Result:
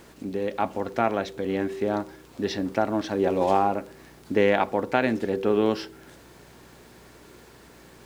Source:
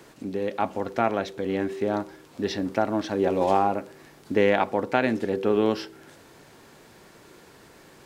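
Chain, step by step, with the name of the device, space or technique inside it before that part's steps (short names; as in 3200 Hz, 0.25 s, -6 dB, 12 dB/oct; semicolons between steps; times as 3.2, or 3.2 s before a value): video cassette with head-switching buzz (buzz 60 Hz, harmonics 7, -56 dBFS -2 dB/oct; white noise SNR 39 dB)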